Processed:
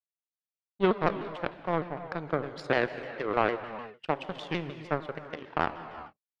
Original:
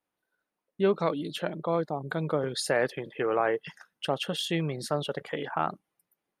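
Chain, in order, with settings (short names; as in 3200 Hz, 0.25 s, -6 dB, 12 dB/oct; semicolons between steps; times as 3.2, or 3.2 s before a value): HPF 68 Hz; power-law curve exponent 2; air absorption 160 m; non-linear reverb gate 0.44 s flat, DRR 10 dB; shaped vibrato saw down 6.6 Hz, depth 160 cents; gain +5.5 dB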